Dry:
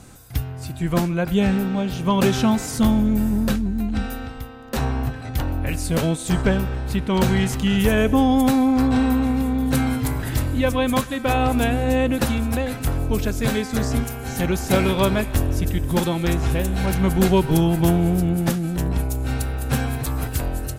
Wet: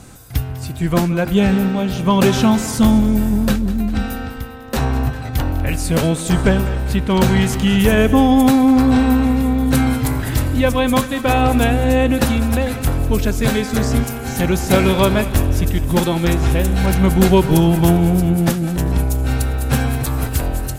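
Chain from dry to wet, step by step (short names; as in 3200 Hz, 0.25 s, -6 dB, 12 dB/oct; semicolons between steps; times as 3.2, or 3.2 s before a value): split-band echo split 530 Hz, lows 0.137 s, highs 0.2 s, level -15 dB; gain +4.5 dB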